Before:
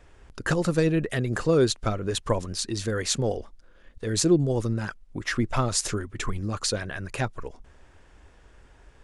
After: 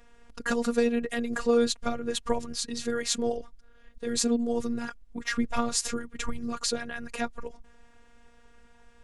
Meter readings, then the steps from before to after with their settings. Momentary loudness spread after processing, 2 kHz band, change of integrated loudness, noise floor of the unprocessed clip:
10 LU, −2.0 dB, −3.0 dB, −55 dBFS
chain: phases set to zero 236 Hz

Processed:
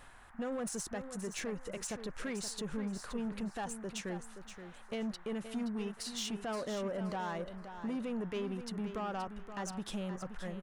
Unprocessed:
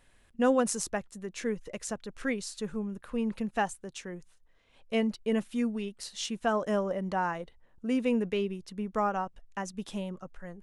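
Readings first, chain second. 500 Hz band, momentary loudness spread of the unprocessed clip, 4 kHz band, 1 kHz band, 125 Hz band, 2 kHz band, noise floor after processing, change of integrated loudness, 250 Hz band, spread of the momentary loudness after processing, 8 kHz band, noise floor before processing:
−8.5 dB, 12 LU, −2.5 dB, −9.0 dB, −3.0 dB, −7.5 dB, −54 dBFS, −7.0 dB, −6.5 dB, 5 LU, −3.5 dB, −62 dBFS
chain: in parallel at +2 dB: downward compressor, threshold −37 dBFS, peak gain reduction 16 dB
on the sum: brickwall limiter −23 dBFS, peak gain reduction 10 dB
reversed playback
upward compression, threshold −42 dBFS
reversed playback
soft clipping −28.5 dBFS, distortion −14 dB
noise in a band 690–1,800 Hz −57 dBFS
repeating echo 524 ms, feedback 23%, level −10 dB
level −4 dB

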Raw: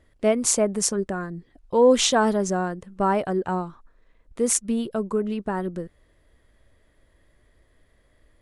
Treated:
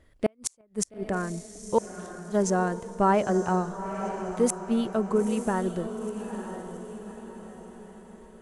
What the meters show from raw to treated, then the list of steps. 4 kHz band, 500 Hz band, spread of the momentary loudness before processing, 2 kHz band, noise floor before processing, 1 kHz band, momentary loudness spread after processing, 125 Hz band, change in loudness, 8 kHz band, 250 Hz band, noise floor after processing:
−14.5 dB, −4.5 dB, 14 LU, −4.0 dB, −63 dBFS, −1.5 dB, 17 LU, 0.0 dB, −5.0 dB, −10.0 dB, −2.0 dB, −60 dBFS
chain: gate with flip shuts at −11 dBFS, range −41 dB
feedback delay with all-pass diffusion 915 ms, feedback 46%, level −9 dB

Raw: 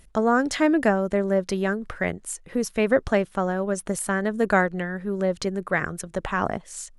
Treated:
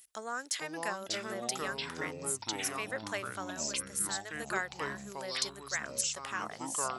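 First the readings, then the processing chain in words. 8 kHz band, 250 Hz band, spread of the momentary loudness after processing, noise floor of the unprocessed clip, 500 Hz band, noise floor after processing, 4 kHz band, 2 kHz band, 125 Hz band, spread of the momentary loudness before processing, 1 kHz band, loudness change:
+1.0 dB, −20.0 dB, 5 LU, −53 dBFS, −17.5 dB, −51 dBFS, +2.0 dB, −9.5 dB, −17.5 dB, 8 LU, −11.0 dB, −11.0 dB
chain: first difference
speech leveller within 4 dB 0.5 s
delay with pitch and tempo change per echo 381 ms, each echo −6 semitones, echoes 3

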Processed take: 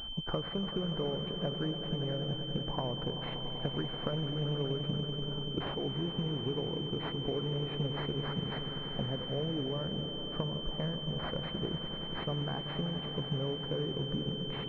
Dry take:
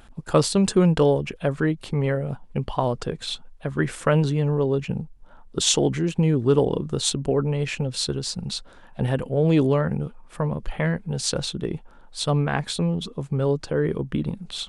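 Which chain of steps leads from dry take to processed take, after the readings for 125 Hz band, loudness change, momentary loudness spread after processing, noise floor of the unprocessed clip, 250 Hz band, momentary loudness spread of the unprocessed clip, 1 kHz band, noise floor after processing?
−11.5 dB, −11.5 dB, 2 LU, −48 dBFS, −12.0 dB, 11 LU, −11.5 dB, −40 dBFS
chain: downward compressor 12 to 1, threshold −34 dBFS, peak gain reduction 21.5 dB
echo that builds up and dies away 96 ms, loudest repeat 5, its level −13 dB
switching amplifier with a slow clock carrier 3,100 Hz
level +1.5 dB

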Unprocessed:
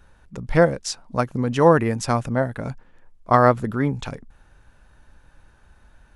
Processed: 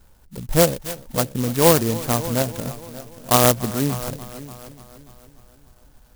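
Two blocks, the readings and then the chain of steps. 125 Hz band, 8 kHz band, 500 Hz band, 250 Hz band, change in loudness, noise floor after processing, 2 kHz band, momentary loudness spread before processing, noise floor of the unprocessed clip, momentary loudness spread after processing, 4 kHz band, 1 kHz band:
0.0 dB, +12.0 dB, −0.5 dB, 0.0 dB, +1.0 dB, −53 dBFS, −2.5 dB, 16 LU, −55 dBFS, 21 LU, +9.0 dB, −3.0 dB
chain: Bessel low-pass filter 5,700 Hz
echo machine with several playback heads 292 ms, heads first and second, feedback 42%, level −18 dB
converter with an unsteady clock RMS 0.14 ms

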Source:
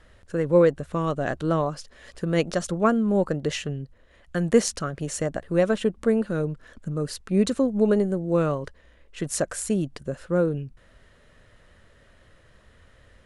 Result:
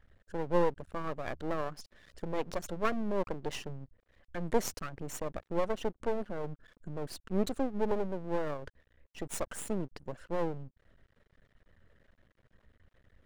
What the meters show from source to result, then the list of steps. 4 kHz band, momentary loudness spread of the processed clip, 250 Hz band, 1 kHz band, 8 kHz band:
−10.5 dB, 13 LU, −13.0 dB, −6.0 dB, −11.5 dB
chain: spectral envelope exaggerated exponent 1.5
half-wave rectification
level −6 dB

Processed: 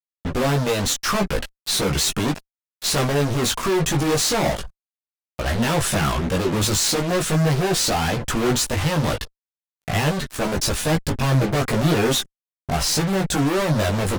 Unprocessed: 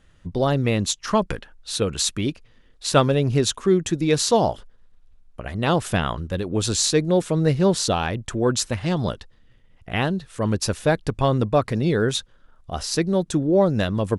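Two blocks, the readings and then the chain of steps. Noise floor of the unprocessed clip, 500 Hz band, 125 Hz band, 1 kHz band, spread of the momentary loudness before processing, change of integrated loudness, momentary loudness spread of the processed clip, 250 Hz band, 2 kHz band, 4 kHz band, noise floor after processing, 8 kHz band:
−54 dBFS, −1.5 dB, +1.5 dB, +1.5 dB, 10 LU, +1.0 dB, 7 LU, 0.0 dB, +4.5 dB, +3.5 dB, below −85 dBFS, +4.0 dB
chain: fuzz pedal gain 43 dB, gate −40 dBFS
multi-voice chorus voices 6, 0.35 Hz, delay 17 ms, depth 4.3 ms
level −3 dB

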